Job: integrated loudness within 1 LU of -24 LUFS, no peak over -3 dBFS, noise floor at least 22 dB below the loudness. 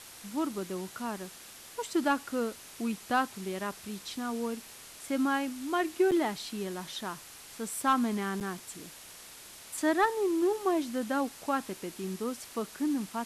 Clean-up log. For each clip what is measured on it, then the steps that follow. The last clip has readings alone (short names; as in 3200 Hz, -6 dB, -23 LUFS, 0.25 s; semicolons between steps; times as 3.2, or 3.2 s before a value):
dropouts 2; longest dropout 7.3 ms; noise floor -50 dBFS; noise floor target -54 dBFS; loudness -32.0 LUFS; peak -16.5 dBFS; loudness target -24.0 LUFS
-> interpolate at 6.11/8.4, 7.3 ms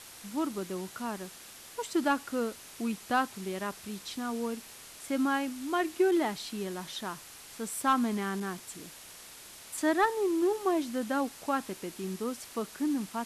dropouts 0; noise floor -50 dBFS; noise floor target -54 dBFS
-> noise print and reduce 6 dB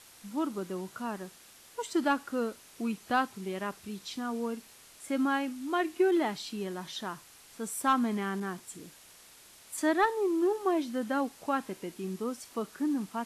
noise floor -56 dBFS; loudness -32.0 LUFS; peak -16.5 dBFS; loudness target -24.0 LUFS
-> gain +8 dB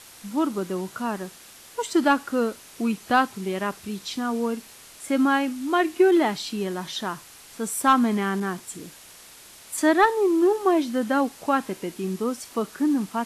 loudness -24.0 LUFS; peak -8.5 dBFS; noise floor -48 dBFS